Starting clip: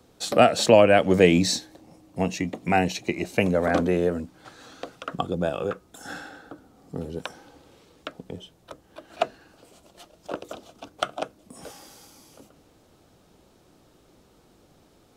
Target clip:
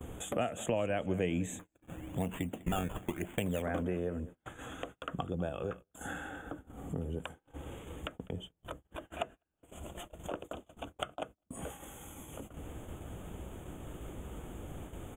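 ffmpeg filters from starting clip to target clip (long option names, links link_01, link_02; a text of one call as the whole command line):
ffmpeg -i in.wav -filter_complex "[0:a]equalizer=frequency=68:width_type=o:width=0.72:gain=5,acompressor=mode=upward:threshold=-40dB:ratio=2.5,asettb=1/sr,asplit=3[link_01][link_02][link_03];[link_01]atrim=end=1.594[link_04];[link_02]atrim=start=1.59:end=3.62,asetpts=PTS-STARTPTS,afade=type=in:duration=0.004:curve=qsin,afade=type=out:start_time=2.026:duration=0.004:curve=qsin,acrusher=samples=15:mix=1:aa=0.000001:lfo=1:lforange=15:lforate=1[link_05];[link_03]atrim=start=3.616[link_06];[link_04][link_05]acrossfade=duration=0.004:curve1=hsin:curve2=qsin[link_07];[link_07][link_06]acrossfade=duration=0.004:curve1=qsin:curve2=hsin,acompressor=threshold=-43dB:ratio=2.5,asuperstop=centerf=4800:order=12:qfactor=1.6,lowshelf=frequency=110:gain=10.5,aecho=1:1:201|402|603:0.112|0.0381|0.013,agate=range=-33dB:threshold=-47dB:ratio=16:detection=peak,volume=2dB" out.wav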